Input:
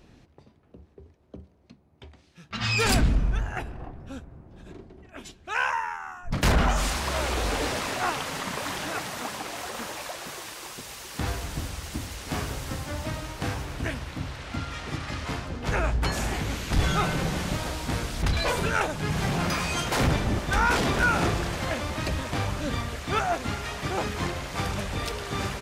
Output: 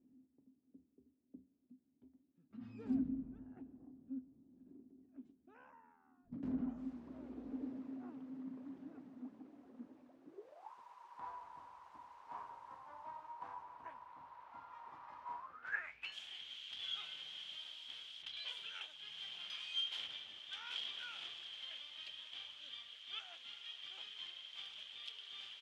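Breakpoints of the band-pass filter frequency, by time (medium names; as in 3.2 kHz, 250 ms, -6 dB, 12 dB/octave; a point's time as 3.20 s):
band-pass filter, Q 16
10.23 s 260 Hz
10.71 s 970 Hz
15.38 s 970 Hz
16.17 s 3.2 kHz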